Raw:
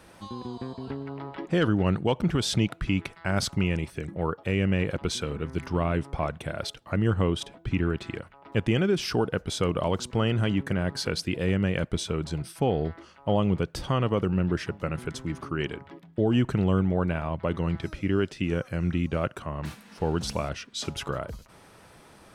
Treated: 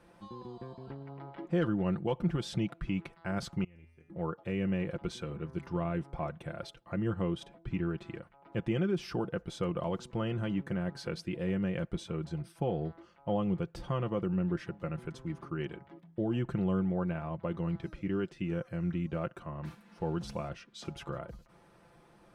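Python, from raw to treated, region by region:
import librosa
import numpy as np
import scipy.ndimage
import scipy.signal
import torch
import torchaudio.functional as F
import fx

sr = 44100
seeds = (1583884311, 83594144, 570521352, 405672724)

y = fx.chain(x, sr, fx.level_steps(step_db=11),
    fx.comb_fb(f0_hz=83.0, decay_s=0.87, harmonics='odd', damping=0.0, mix_pct=90), at=(3.64, 4.1))
y = fx.high_shelf(y, sr, hz=2600.0, db=-10.0)
y = y + 0.54 * np.pad(y, (int(5.8 * sr / 1000.0), 0))[:len(y)]
y = F.gain(torch.from_numpy(y), -8.0).numpy()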